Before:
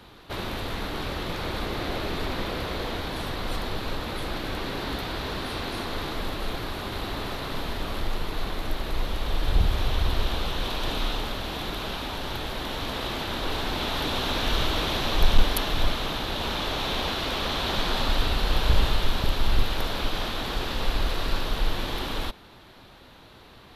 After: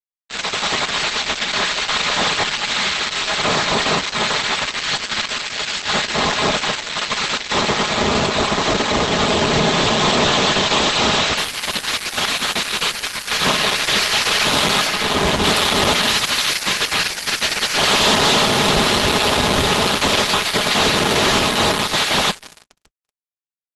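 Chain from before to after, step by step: 4.29–5.02 s: upward compressor, threshold -34 dBFS; band-stop 1.5 kHz, Q 11; tape echo 272 ms, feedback 87%, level -7 dB, low-pass 3.3 kHz; spectral gate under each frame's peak -15 dB weak; 16.03–16.64 s: treble shelf 9.4 kHz +8.5 dB; Schroeder reverb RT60 1.7 s, combs from 29 ms, DRR 13 dB; fuzz box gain 38 dB, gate -40 dBFS; 14.87–15.44 s: treble shelf 2.6 kHz -5 dB; comb 4.8 ms, depth 39%; trim +1 dB; Opus 12 kbps 48 kHz

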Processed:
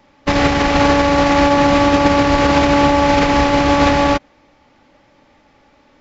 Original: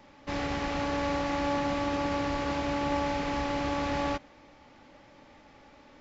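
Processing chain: loudness maximiser +29 dB; upward expansion 2.5:1, over -24 dBFS; trim -1.5 dB

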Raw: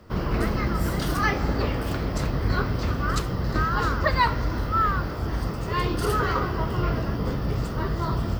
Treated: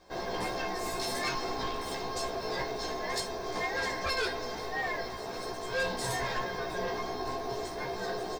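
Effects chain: resonant low shelf 100 Hz -7 dB, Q 3; feedback comb 530 Hz, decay 0.18 s, harmonics all, mix 90%; ring modulator 540 Hz; high-order bell 5.7 kHz +8 dB; doubling 16 ms -2 dB; in parallel at -11 dB: sine folder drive 10 dB, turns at -22 dBFS

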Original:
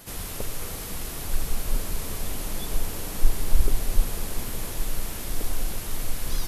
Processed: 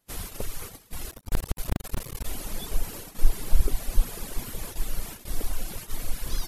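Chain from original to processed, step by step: 1.11–2.25 s: cycle switcher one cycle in 2, muted; reverb removal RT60 1.4 s; gate -36 dBFS, range -27 dB

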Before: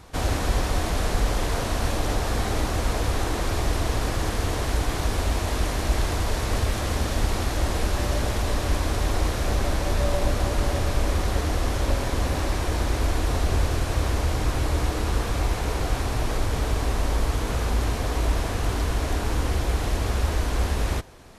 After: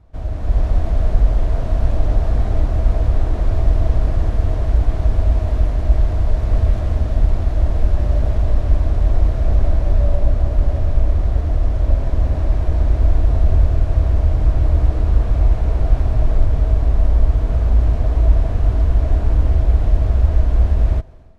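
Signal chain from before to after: peaking EQ 640 Hz +11.5 dB 0.22 oct; level rider gain up to 11.5 dB; RIAA curve playback; trim -15 dB

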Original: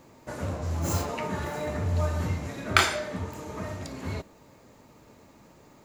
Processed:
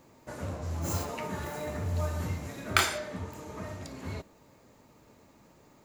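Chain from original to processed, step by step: treble shelf 10 kHz +3.5 dB, from 1.01 s +11.5 dB, from 2.98 s +2.5 dB; trim -4.5 dB

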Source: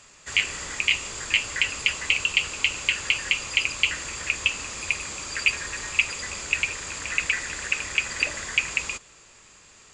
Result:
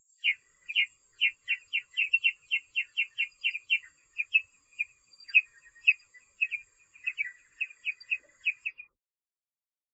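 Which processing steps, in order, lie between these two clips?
delay that grows with frequency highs early, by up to 325 ms; resampled via 32 kHz; harmony voices -5 st -16 dB, +12 st -18 dB; spectral contrast expander 2.5:1

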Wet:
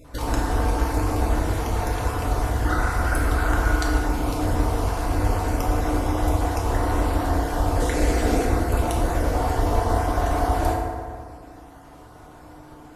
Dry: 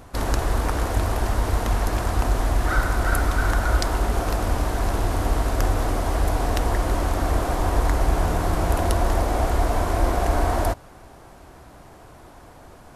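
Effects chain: random holes in the spectrogram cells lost 25%; 7.80–8.45 s: ten-band graphic EQ 125 Hz -9 dB, 250 Hz +8 dB, 500 Hz +6 dB, 1 kHz -9 dB, 2 kHz +7 dB, 4 kHz +4 dB, 8 kHz +7 dB; FDN reverb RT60 2 s, low-frequency decay 0.95×, high-frequency decay 0.45×, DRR -2.5 dB; trim -3.5 dB

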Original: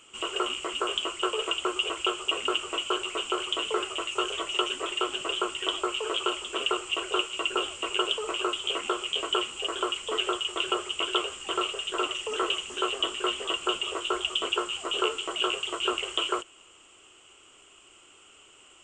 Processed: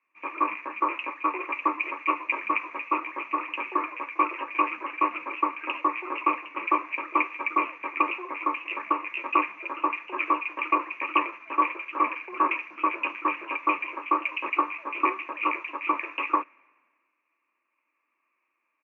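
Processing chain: cabinet simulation 500–2600 Hz, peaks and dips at 510 Hz -8 dB, 900 Hz -8 dB, 1.4 kHz +5 dB; pitch shift -3 st; three bands expanded up and down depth 70%; trim +4 dB

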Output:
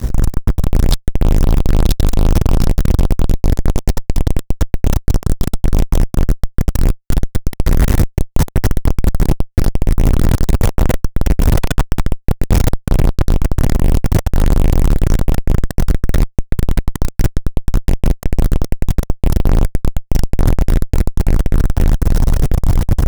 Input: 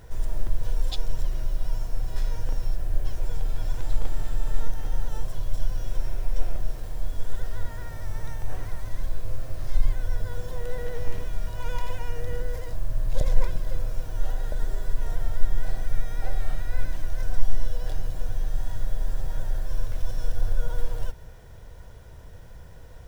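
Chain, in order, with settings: compression 10:1, threshold -20 dBFS, peak gain reduction 14 dB; on a send: echo that smears into a reverb 968 ms, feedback 53%, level -7 dB; on the sum: level rider gain up to 9 dB; tone controls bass +14 dB, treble +7 dB; fuzz box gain 27 dB, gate -35 dBFS; trim +6 dB

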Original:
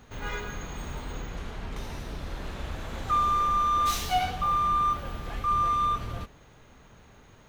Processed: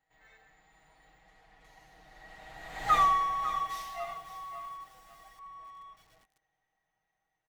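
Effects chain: Doppler pass-by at 2.96 s, 23 m/s, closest 1.8 m; tilt shelf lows -4.5 dB, about 700 Hz; comb 6.3 ms, depth 88%; small resonant body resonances 750/1900 Hz, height 17 dB, ringing for 35 ms; bit-crushed delay 551 ms, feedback 35%, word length 8-bit, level -11.5 dB; trim -2 dB

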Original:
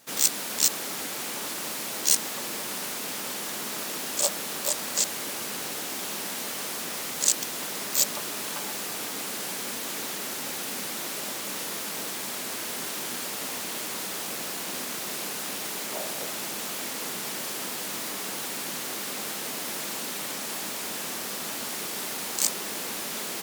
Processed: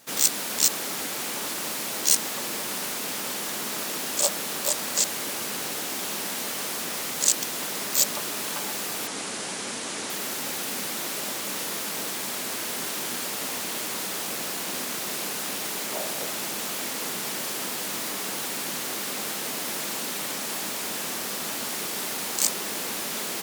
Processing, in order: 9.07–10.10 s: Chebyshev low-pass 10 kHz, order 5; in parallel at -10 dB: saturation -19 dBFS, distortion -11 dB

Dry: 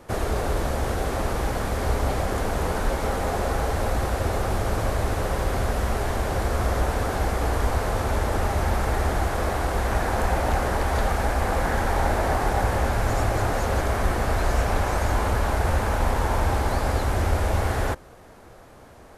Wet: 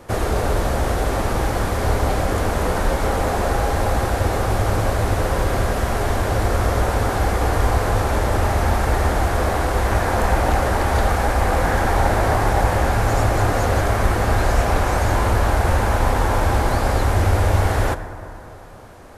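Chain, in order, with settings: on a send: reverberation RT60 3.1 s, pre-delay 5 ms, DRR 9 dB; on the sum: trim +4.5 dB

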